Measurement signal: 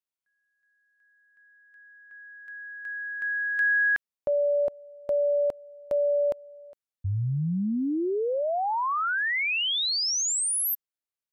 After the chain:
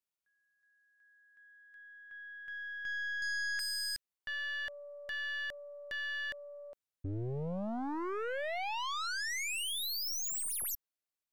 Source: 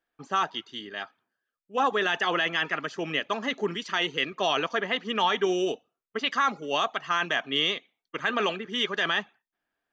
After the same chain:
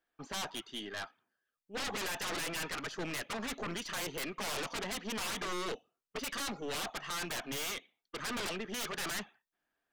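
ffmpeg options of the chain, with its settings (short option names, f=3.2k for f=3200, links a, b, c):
-af "aeval=exprs='0.0376*(abs(mod(val(0)/0.0376+3,4)-2)-1)':c=same,aeval=exprs='(tanh(44.7*val(0)+0.45)-tanh(0.45))/44.7':c=same"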